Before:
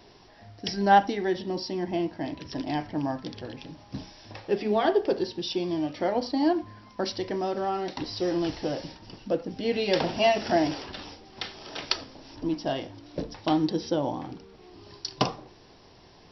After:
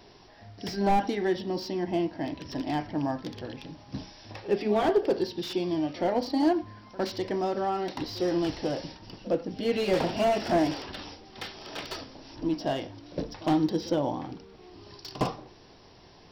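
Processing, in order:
echo ahead of the sound 58 ms −19 dB
slew-rate limiting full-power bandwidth 67 Hz

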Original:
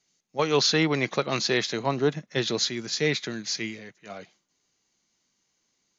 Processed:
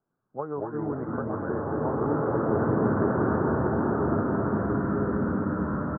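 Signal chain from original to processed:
pitch glide at a constant tempo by −3.5 semitones starting unshifted
downward compressor, threshold −29 dBFS, peak gain reduction 10 dB
delay with pitch and tempo change per echo 97 ms, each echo −5 semitones, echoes 2
Butterworth low-pass 1,500 Hz 72 dB per octave
on a send: single-tap delay 243 ms −6.5 dB
on the sum: slow-attack reverb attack 1,910 ms, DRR −7 dB

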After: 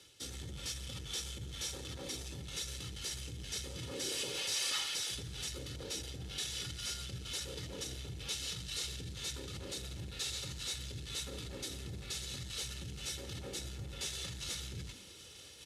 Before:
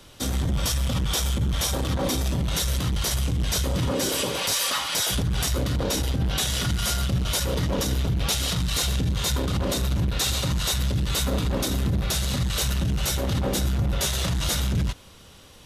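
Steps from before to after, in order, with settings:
variable-slope delta modulation 64 kbit/s
guitar amp tone stack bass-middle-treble 10-0-1
comb filter 2.3 ms, depth 56%
reversed playback
upward compression, threshold −37 dBFS
reversed playback
meter weighting curve A
on a send: echo with shifted repeats 169 ms, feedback 53%, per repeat +130 Hz, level −19.5 dB
on the sum: level +8.5 dB

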